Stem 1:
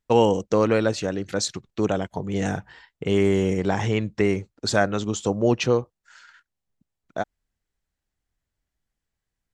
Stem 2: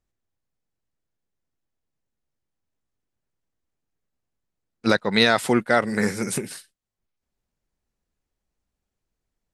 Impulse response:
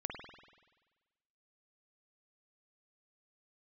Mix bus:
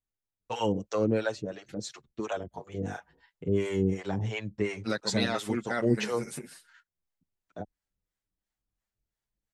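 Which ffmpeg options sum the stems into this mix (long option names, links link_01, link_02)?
-filter_complex "[0:a]acrossover=split=530[link_01][link_02];[link_01]aeval=exprs='val(0)*(1-1/2+1/2*cos(2*PI*2.9*n/s))':channel_layout=same[link_03];[link_02]aeval=exprs='val(0)*(1-1/2-1/2*cos(2*PI*2.9*n/s))':channel_layout=same[link_04];[link_03][link_04]amix=inputs=2:normalize=0,adelay=400,volume=-1dB[link_05];[1:a]volume=-10dB[link_06];[link_05][link_06]amix=inputs=2:normalize=0,asplit=2[link_07][link_08];[link_08]adelay=7.6,afreqshift=0.25[link_09];[link_07][link_09]amix=inputs=2:normalize=1"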